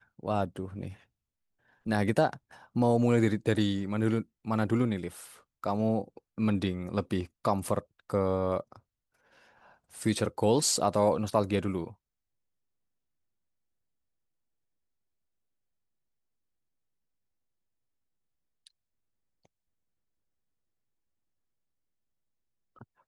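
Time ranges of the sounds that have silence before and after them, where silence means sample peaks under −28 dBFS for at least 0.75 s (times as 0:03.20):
0:01.88–0:08.60
0:10.06–0:11.87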